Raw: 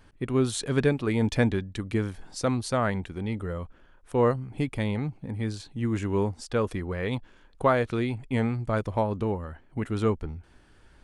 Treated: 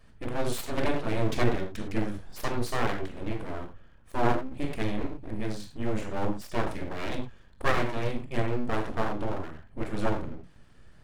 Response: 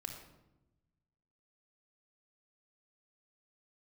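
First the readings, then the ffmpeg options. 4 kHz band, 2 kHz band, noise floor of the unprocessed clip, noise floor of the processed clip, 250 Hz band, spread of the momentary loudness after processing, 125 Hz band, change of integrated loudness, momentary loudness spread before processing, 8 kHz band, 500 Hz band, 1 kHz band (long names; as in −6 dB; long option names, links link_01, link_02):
−1.0 dB, −0.5 dB, −57 dBFS, −53 dBFS, −4.5 dB, 10 LU, −5.5 dB, −4.0 dB, 9 LU, −4.5 dB, −4.5 dB, −0.5 dB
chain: -filter_complex "[0:a]aeval=exprs='val(0)+0.001*(sin(2*PI*50*n/s)+sin(2*PI*2*50*n/s)/2+sin(2*PI*3*50*n/s)/3+sin(2*PI*4*50*n/s)/4+sin(2*PI*5*50*n/s)/5)':channel_layout=same[link_01];[1:a]atrim=start_sample=2205,afade=type=out:start_time=0.21:duration=0.01,atrim=end_sample=9702,asetrate=61740,aresample=44100[link_02];[link_01][link_02]afir=irnorm=-1:irlink=0,aeval=exprs='abs(val(0))':channel_layout=same,volume=4dB"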